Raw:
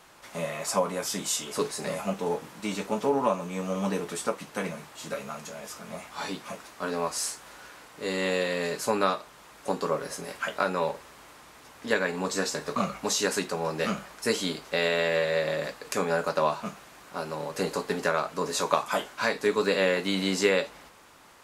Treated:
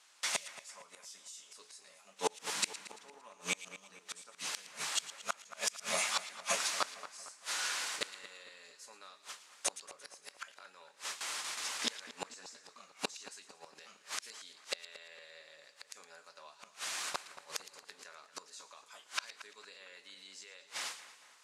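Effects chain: frequency weighting ITU-R 468; gate with hold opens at -34 dBFS; peak limiter -11.5 dBFS, peak gain reduction 11 dB; inverted gate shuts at -23 dBFS, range -34 dB; two-band feedback delay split 2.1 kHz, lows 228 ms, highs 114 ms, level -14 dB; trim +5.5 dB

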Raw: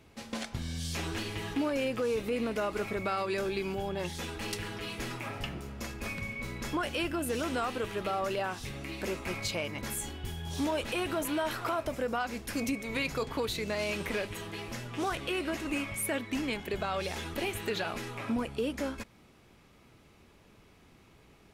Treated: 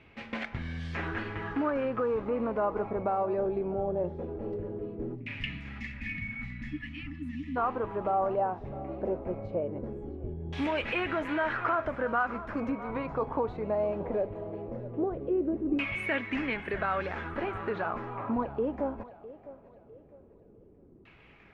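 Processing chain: spectral selection erased 5.15–7.56 s, 320–1700 Hz; thinning echo 655 ms, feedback 59%, high-pass 630 Hz, level -13 dB; LFO low-pass saw down 0.19 Hz 370–2500 Hz

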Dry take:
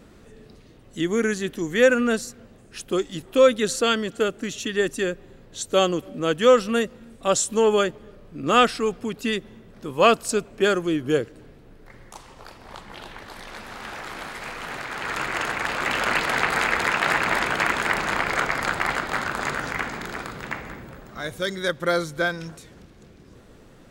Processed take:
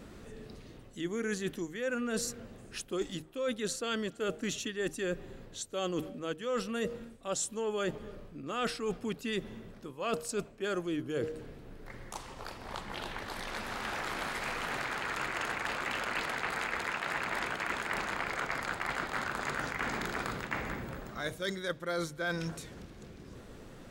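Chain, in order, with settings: de-hum 156.9 Hz, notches 5; reverse; compression 12:1, threshold -31 dBFS, peak gain reduction 20.5 dB; reverse

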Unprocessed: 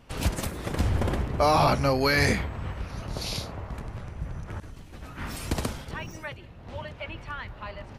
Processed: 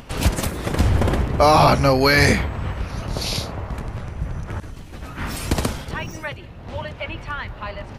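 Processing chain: upward compressor, threshold -43 dBFS; trim +7.5 dB

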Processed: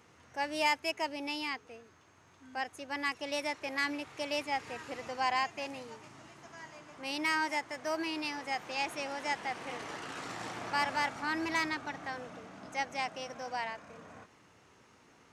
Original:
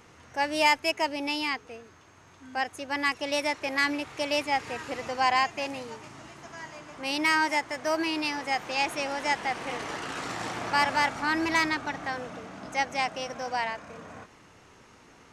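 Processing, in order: high-pass 69 Hz; trim -7 dB

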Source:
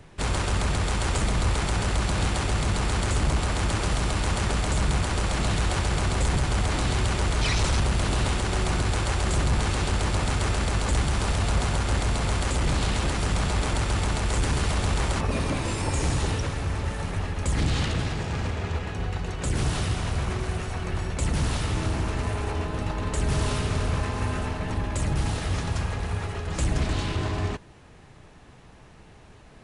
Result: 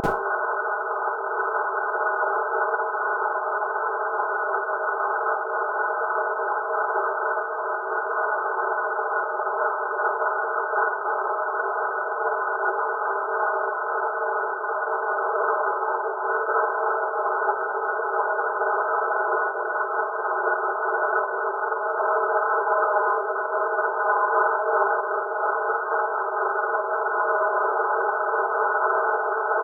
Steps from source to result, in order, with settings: one-bit comparator; elliptic high-pass 390 Hz, stop band 40 dB; tilt EQ +4 dB/octave; comb 4.7 ms, depth 90%; peak limiter -7 dBFS, peak gain reduction 5 dB; vibrato 0.86 Hz 6.7 cents; brick-wall FIR low-pass 1.6 kHz; Schroeder reverb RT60 0.3 s, DRR -9 dB; random flutter of the level, depth 50%; trim +2.5 dB

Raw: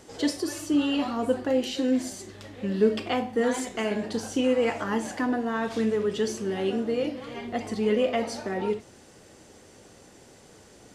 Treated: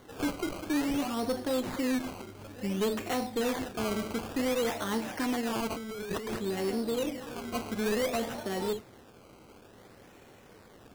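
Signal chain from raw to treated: valve stage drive 23 dB, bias 0.3; decimation with a swept rate 17×, swing 100% 0.56 Hz; 5.70–6.39 s: compressor with a negative ratio -35 dBFS, ratio -1; trim -1.5 dB

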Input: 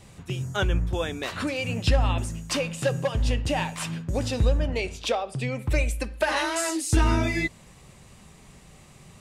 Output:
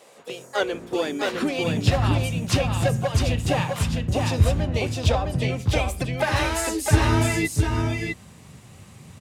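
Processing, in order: harmony voices +5 st -8 dB; high-pass sweep 510 Hz -> 92 Hz, 0.50–2.14 s; delay 658 ms -3.5 dB

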